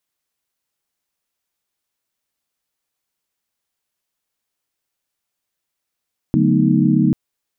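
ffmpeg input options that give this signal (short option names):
-f lavfi -i "aevalsrc='0.126*(sin(2*PI*146.83*t)+sin(2*PI*185*t)+sin(2*PI*220*t)+sin(2*PI*246.94*t)+sin(2*PI*311.13*t))':d=0.79:s=44100"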